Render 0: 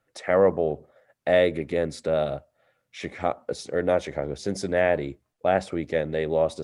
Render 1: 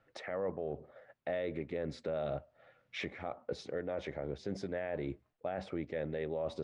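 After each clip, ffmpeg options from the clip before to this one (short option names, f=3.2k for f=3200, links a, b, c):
-af "areverse,acompressor=threshold=-30dB:ratio=4,areverse,lowpass=3.4k,alimiter=level_in=7dB:limit=-24dB:level=0:latency=1:release=312,volume=-7dB,volume=3.5dB"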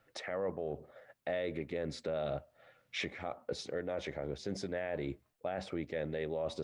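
-af "highshelf=f=4k:g=10.5"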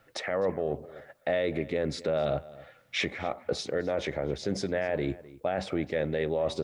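-filter_complex "[0:a]asplit=2[a][b];[b]adelay=256.6,volume=-19dB,highshelf=f=4k:g=-5.77[c];[a][c]amix=inputs=2:normalize=0,volume=8dB"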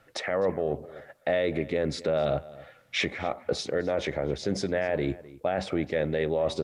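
-af "aresample=32000,aresample=44100,volume=2dB"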